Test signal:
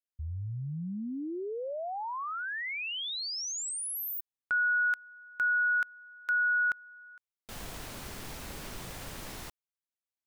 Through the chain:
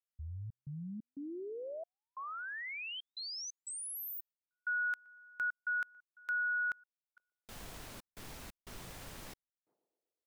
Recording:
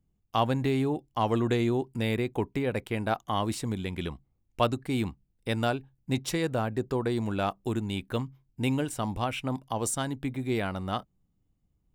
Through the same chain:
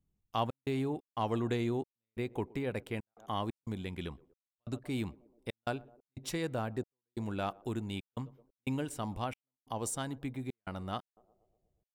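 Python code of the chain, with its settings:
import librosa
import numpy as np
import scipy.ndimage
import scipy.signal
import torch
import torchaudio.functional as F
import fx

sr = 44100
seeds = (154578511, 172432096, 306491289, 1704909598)

y = fx.echo_banded(x, sr, ms=120, feedback_pct=66, hz=460.0, wet_db=-22.0)
y = fx.step_gate(y, sr, bpm=90, pattern='xxx.xx.xxxx..xx', floor_db=-60.0, edge_ms=4.5)
y = F.gain(torch.from_numpy(y), -6.5).numpy()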